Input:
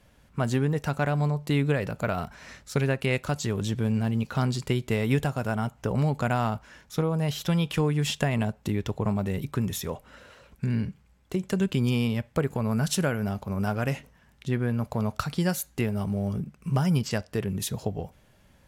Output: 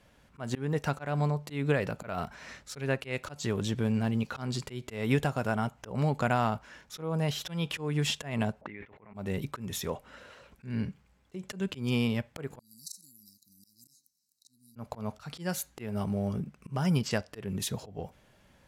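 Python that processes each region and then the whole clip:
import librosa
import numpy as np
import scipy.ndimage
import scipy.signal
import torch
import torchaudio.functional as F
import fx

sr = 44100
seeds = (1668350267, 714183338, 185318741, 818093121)

y = fx.chain(x, sr, fx.highpass(hz=210.0, slope=6),
    fx.over_compress(threshold_db=-42.0, ratio=-1.0),
    fx.envelope_lowpass(base_hz=550.0, top_hz=2100.0, q=5.3, full_db=-40.0, direction='up'), at=(8.61, 9.14))
y = fx.chain(y, sr, fx.brickwall_bandstop(low_hz=330.0, high_hz=3800.0),
    fx.differentiator(), at=(12.59, 14.76))
y = fx.high_shelf(y, sr, hz=9700.0, db=-7.0)
y = fx.auto_swell(y, sr, attack_ms=190.0)
y = fx.low_shelf(y, sr, hz=150.0, db=-6.5)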